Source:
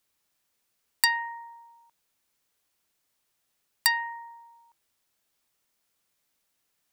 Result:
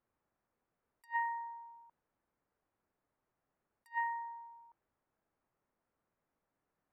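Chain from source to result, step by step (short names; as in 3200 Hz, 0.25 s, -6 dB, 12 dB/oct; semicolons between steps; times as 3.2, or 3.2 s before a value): bell 4100 Hz -14 dB 1.8 oct; low-pass opened by the level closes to 1600 Hz, open at -30 dBFS; attack slew limiter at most 420 dB/s; gain +2 dB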